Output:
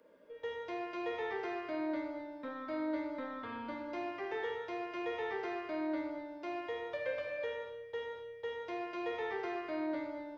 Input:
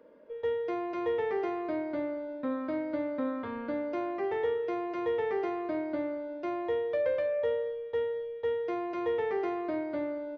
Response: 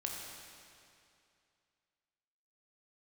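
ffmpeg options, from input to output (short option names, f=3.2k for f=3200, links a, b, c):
-filter_complex "[0:a]highshelf=f=2k:g=10,acrossover=split=400|1900[a][b][c];[a]asoftclip=type=tanh:threshold=-35.5dB[d];[d][b][c]amix=inputs=3:normalize=0[e];[1:a]atrim=start_sample=2205,afade=t=out:st=0.31:d=0.01,atrim=end_sample=14112[f];[e][f]afir=irnorm=-1:irlink=0,volume=-5.5dB"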